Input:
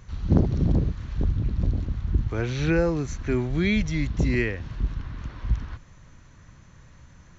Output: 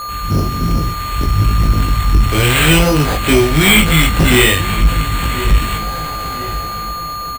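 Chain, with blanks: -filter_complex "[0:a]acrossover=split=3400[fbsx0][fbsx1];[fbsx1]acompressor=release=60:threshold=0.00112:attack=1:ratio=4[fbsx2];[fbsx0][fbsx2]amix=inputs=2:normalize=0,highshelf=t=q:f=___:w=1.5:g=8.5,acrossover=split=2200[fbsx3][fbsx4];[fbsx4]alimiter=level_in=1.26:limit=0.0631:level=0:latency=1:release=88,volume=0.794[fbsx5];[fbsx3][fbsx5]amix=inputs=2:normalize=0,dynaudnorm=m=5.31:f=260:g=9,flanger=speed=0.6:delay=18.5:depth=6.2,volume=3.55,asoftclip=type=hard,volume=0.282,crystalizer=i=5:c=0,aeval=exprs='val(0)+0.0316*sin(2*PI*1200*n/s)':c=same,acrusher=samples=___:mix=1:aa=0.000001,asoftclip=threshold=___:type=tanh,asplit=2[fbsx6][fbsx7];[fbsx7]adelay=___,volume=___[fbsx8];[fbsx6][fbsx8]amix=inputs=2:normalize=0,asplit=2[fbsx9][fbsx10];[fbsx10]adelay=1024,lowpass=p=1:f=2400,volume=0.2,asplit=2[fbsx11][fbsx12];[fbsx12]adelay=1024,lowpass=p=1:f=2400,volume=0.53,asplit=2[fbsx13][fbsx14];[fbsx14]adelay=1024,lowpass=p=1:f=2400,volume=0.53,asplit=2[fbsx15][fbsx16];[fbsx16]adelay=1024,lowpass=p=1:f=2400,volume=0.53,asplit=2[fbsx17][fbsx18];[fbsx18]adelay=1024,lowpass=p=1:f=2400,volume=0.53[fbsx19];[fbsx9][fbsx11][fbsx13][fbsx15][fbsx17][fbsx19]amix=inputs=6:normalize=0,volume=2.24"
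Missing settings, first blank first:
2000, 8, 0.224, 19, 0.447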